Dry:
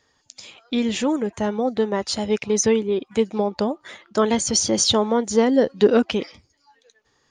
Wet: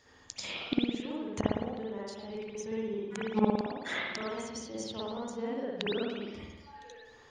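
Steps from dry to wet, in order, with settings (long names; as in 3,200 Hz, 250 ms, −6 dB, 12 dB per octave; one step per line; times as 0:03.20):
gate with flip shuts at −17 dBFS, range −25 dB
spring reverb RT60 1.1 s, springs 54 ms, chirp 65 ms, DRR −7 dB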